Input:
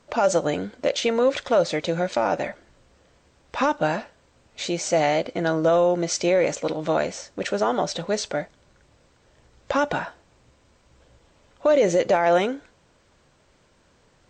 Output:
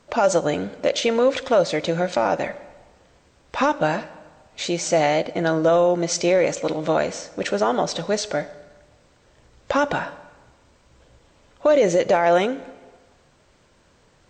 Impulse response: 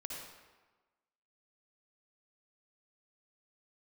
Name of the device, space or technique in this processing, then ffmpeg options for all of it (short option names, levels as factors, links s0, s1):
compressed reverb return: -filter_complex "[0:a]asplit=2[s0][s1];[1:a]atrim=start_sample=2205[s2];[s1][s2]afir=irnorm=-1:irlink=0,acompressor=threshold=0.0794:ratio=6,volume=0.282[s3];[s0][s3]amix=inputs=2:normalize=0,volume=1.12"